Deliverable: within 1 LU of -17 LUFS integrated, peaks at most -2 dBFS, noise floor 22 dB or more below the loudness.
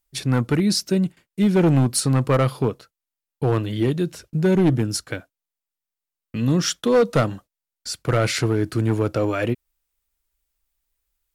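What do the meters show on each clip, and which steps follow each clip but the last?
clipped 1.7%; flat tops at -12.0 dBFS; loudness -21.5 LUFS; peak -12.0 dBFS; loudness target -17.0 LUFS
-> clip repair -12 dBFS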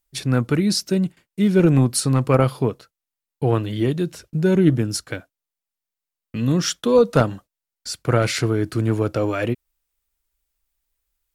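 clipped 0.0%; loudness -20.5 LUFS; peak -3.0 dBFS; loudness target -17.0 LUFS
-> gain +3.5 dB; limiter -2 dBFS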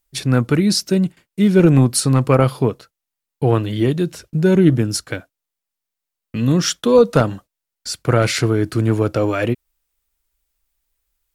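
loudness -17.0 LUFS; peak -2.0 dBFS; noise floor -83 dBFS

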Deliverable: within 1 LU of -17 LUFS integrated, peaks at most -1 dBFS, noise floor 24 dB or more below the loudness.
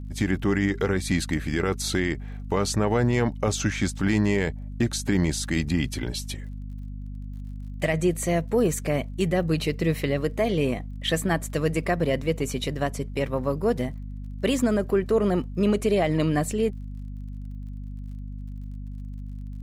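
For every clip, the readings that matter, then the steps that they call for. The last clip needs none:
ticks 40/s; hum 50 Hz; harmonics up to 250 Hz; hum level -33 dBFS; loudness -25.5 LUFS; peak -12.0 dBFS; loudness target -17.0 LUFS
-> de-click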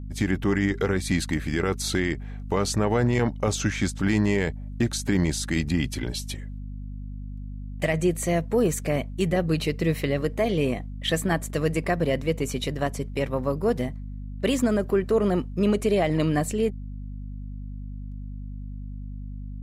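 ticks 0.10/s; hum 50 Hz; harmonics up to 250 Hz; hum level -33 dBFS
-> de-hum 50 Hz, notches 5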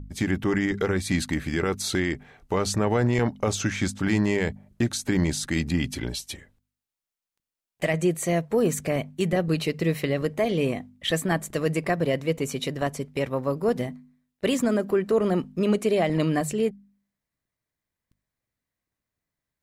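hum none; loudness -26.0 LUFS; peak -11.5 dBFS; loudness target -17.0 LUFS
-> gain +9 dB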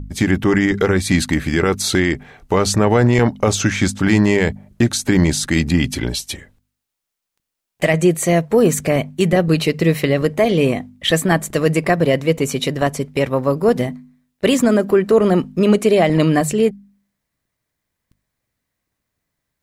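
loudness -17.0 LUFS; peak -2.5 dBFS; noise floor -79 dBFS

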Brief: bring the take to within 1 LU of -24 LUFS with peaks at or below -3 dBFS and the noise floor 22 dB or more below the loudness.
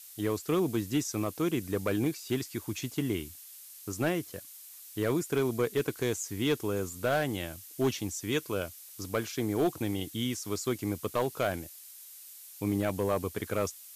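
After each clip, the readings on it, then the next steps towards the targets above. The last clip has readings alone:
clipped 0.5%; flat tops at -20.5 dBFS; noise floor -50 dBFS; noise floor target -54 dBFS; loudness -32.0 LUFS; peak -20.5 dBFS; loudness target -24.0 LUFS
-> clip repair -20.5 dBFS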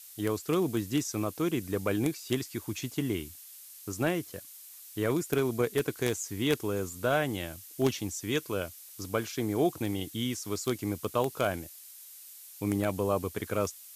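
clipped 0.0%; noise floor -50 dBFS; noise floor target -54 dBFS
-> denoiser 6 dB, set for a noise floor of -50 dBFS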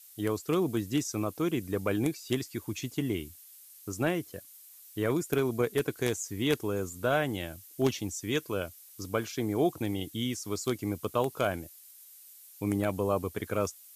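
noise floor -53 dBFS; noise floor target -54 dBFS
-> denoiser 6 dB, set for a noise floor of -53 dBFS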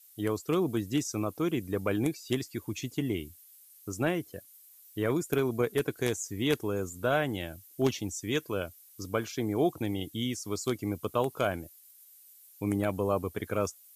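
noise floor -57 dBFS; loudness -31.5 LUFS; peak -11.5 dBFS; loudness target -24.0 LUFS
-> gain +7.5 dB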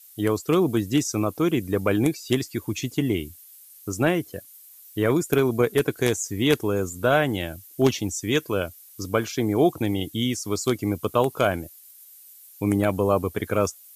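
loudness -24.0 LUFS; peak -4.0 dBFS; noise floor -49 dBFS

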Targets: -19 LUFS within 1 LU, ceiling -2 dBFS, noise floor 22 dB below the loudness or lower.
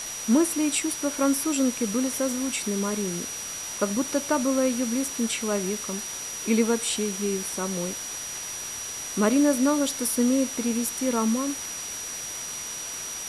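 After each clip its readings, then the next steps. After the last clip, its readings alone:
steady tone 5800 Hz; tone level -34 dBFS; noise floor -35 dBFS; noise floor target -48 dBFS; loudness -26.0 LUFS; peak -9.5 dBFS; loudness target -19.0 LUFS
-> notch 5800 Hz, Q 30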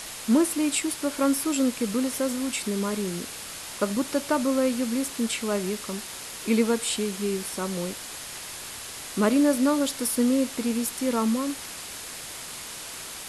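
steady tone none; noise floor -39 dBFS; noise floor target -49 dBFS
-> denoiser 10 dB, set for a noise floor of -39 dBFS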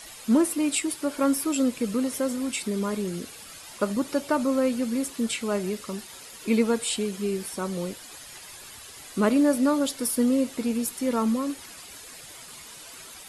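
noise floor -44 dBFS; noise floor target -48 dBFS
-> denoiser 6 dB, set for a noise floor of -44 dBFS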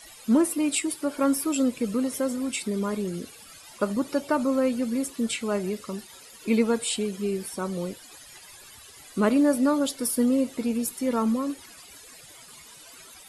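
noise floor -48 dBFS; loudness -26.0 LUFS; peak -10.0 dBFS; loudness target -19.0 LUFS
-> gain +7 dB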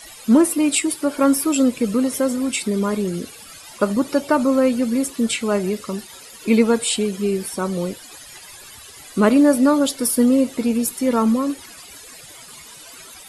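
loudness -19.0 LUFS; peak -3.0 dBFS; noise floor -41 dBFS

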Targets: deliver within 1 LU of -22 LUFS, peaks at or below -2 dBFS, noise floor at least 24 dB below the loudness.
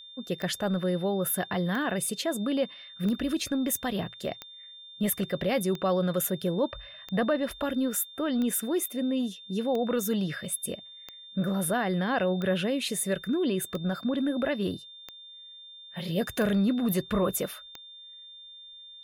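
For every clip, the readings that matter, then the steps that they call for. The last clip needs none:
clicks 14; steady tone 3600 Hz; tone level -45 dBFS; loudness -29.0 LUFS; peak -15.0 dBFS; loudness target -22.0 LUFS
-> de-click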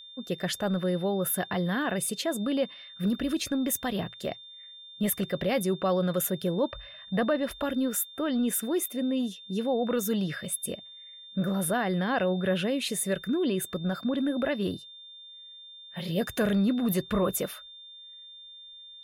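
clicks 0; steady tone 3600 Hz; tone level -45 dBFS
-> notch 3600 Hz, Q 30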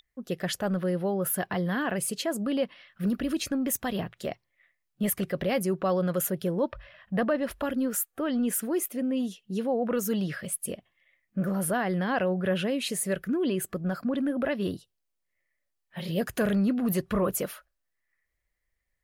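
steady tone none; loudness -29.0 LUFS; peak -17.0 dBFS; loudness target -22.0 LUFS
-> gain +7 dB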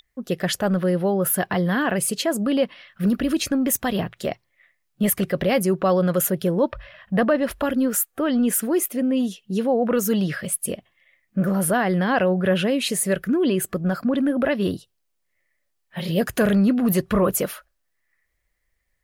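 loudness -22.0 LUFS; peak -10.0 dBFS; noise floor -73 dBFS

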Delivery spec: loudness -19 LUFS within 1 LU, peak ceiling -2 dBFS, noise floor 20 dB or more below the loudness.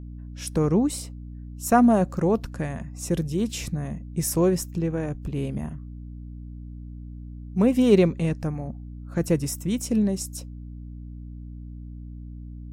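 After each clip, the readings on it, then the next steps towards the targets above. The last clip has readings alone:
hum 60 Hz; harmonics up to 300 Hz; hum level -36 dBFS; loudness -24.5 LUFS; peak -5.5 dBFS; loudness target -19.0 LUFS
-> de-hum 60 Hz, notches 5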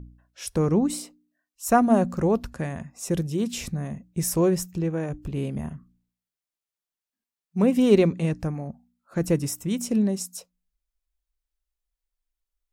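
hum none; loudness -25.0 LUFS; peak -6.0 dBFS; loudness target -19.0 LUFS
-> gain +6 dB; limiter -2 dBFS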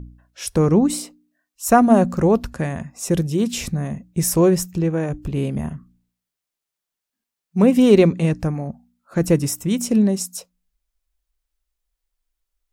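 loudness -19.0 LUFS; peak -2.0 dBFS; noise floor -85 dBFS

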